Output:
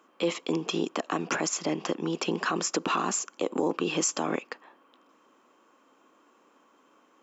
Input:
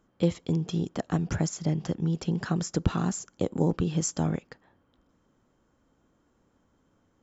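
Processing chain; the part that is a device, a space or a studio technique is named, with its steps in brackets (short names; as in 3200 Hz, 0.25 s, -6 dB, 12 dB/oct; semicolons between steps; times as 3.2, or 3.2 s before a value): laptop speaker (HPF 280 Hz 24 dB/oct; bell 1100 Hz +9 dB 0.43 oct; bell 2600 Hz +9.5 dB 0.42 oct; limiter -23.5 dBFS, peak gain reduction 10 dB); gain +7 dB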